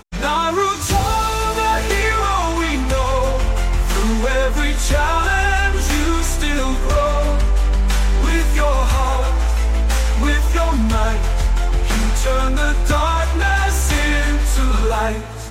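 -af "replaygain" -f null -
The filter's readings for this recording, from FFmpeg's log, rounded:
track_gain = +2.3 dB
track_peak = 0.398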